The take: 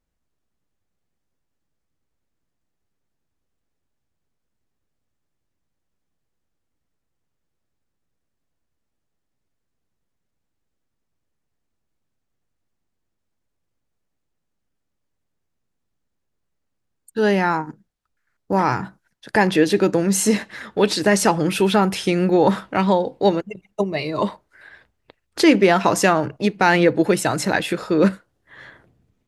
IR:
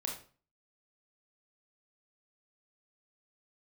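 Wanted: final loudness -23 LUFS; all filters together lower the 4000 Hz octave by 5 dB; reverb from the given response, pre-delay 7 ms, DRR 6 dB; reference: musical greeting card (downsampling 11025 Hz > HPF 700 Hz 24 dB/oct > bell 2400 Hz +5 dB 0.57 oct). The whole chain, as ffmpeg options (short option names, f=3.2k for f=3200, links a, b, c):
-filter_complex "[0:a]equalizer=f=4k:t=o:g=-8.5,asplit=2[a][b];[1:a]atrim=start_sample=2205,adelay=7[c];[b][c]afir=irnorm=-1:irlink=0,volume=-7.5dB[d];[a][d]amix=inputs=2:normalize=0,aresample=11025,aresample=44100,highpass=f=700:w=0.5412,highpass=f=700:w=1.3066,equalizer=f=2.4k:t=o:w=0.57:g=5,volume=0.5dB"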